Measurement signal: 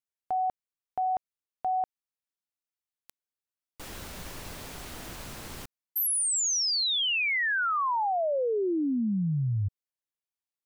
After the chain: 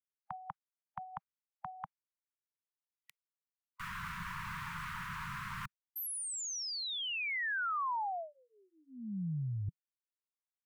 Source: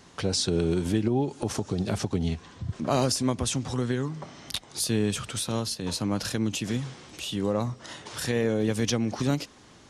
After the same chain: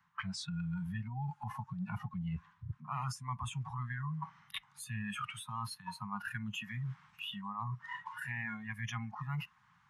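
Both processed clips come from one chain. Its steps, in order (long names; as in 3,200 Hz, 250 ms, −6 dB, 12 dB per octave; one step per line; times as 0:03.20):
inverse Chebyshev band-stop filter 280–580 Hz, stop band 50 dB
three-way crossover with the lows and the highs turned down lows −17 dB, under 160 Hz, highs −22 dB, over 2,000 Hz
noise reduction from a noise print of the clip's start 19 dB
reversed playback
downward compressor 4 to 1, threshold −51 dBFS
reversed playback
level +12.5 dB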